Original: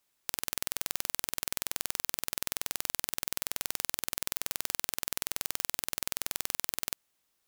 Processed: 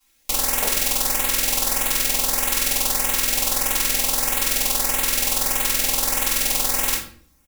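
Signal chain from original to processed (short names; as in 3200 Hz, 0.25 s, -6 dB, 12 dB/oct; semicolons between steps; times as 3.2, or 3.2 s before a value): comb 3.7 ms, depth 71%; LFO notch saw up 1.6 Hz 550–5800 Hz; shoebox room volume 57 m³, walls mixed, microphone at 3.1 m; gain +1 dB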